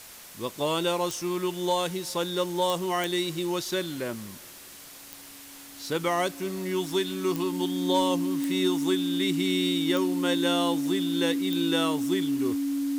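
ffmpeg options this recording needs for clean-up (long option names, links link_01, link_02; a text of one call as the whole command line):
ffmpeg -i in.wav -af "adeclick=threshold=4,bandreject=frequency=280:width=30,afftdn=noise_reduction=28:noise_floor=-46" out.wav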